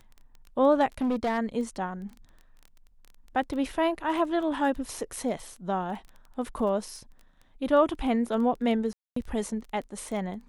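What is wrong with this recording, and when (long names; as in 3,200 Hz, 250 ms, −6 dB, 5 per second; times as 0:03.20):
surface crackle 13 per second −36 dBFS
0:01.01–0:01.39: clipping −23 dBFS
0:08.93–0:09.16: drop-out 234 ms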